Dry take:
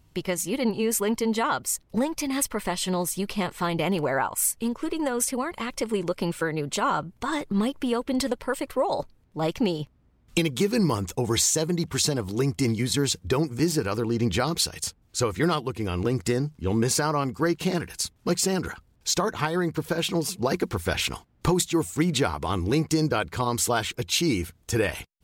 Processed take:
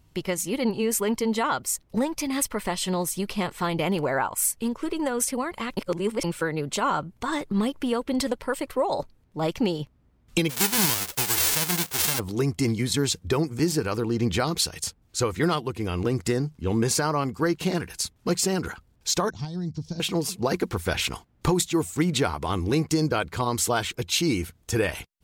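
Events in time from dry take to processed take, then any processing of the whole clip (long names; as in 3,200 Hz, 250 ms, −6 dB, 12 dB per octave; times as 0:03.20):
0:05.77–0:06.24: reverse
0:10.49–0:12.18: spectral envelope flattened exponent 0.1
0:19.30–0:20.00: drawn EQ curve 180 Hz 0 dB, 500 Hz −19 dB, 730 Hz −13 dB, 1,300 Hz −26 dB, 2,600 Hz −18 dB, 5,500 Hz +3 dB, 12,000 Hz −30 dB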